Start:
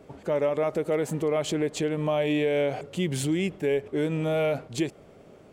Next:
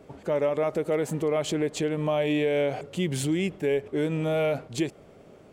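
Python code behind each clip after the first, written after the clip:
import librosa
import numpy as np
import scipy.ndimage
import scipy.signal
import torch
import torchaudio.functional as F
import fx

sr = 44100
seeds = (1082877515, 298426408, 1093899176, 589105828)

y = x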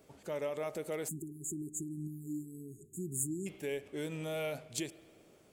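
y = F.preemphasis(torch.from_numpy(x), 0.8).numpy()
y = fx.rev_spring(y, sr, rt60_s=1.6, pass_ms=(46,), chirp_ms=50, drr_db=16.5)
y = fx.spec_erase(y, sr, start_s=1.08, length_s=2.39, low_hz=410.0, high_hz=6600.0)
y = y * librosa.db_to_amplitude(1.0)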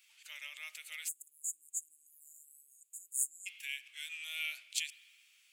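y = fx.ladder_highpass(x, sr, hz=2200.0, resonance_pct=50)
y = y * librosa.db_to_amplitude(11.5)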